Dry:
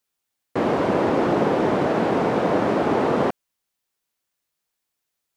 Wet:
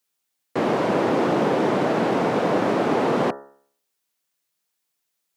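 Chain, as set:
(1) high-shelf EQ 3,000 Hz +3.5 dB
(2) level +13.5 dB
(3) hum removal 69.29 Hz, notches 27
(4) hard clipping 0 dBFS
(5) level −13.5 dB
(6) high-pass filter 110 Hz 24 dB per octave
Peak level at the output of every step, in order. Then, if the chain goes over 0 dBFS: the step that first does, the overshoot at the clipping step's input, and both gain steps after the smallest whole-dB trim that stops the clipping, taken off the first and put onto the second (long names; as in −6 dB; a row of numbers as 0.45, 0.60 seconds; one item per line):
−7.5, +6.0, +5.5, 0.0, −13.5, −10.0 dBFS
step 2, 5.5 dB
step 2 +7.5 dB, step 5 −7.5 dB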